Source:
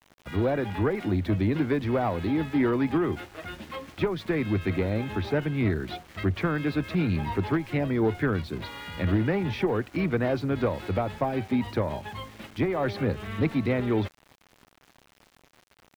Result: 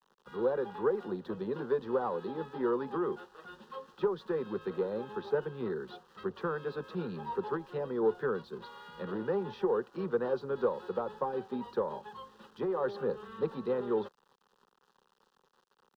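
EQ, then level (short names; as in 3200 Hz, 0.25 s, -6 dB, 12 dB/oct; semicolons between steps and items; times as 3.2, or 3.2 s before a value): three-band isolator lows -12 dB, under 260 Hz, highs -14 dB, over 4600 Hz; dynamic EQ 530 Hz, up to +6 dB, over -38 dBFS, Q 0.82; fixed phaser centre 440 Hz, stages 8; -5.0 dB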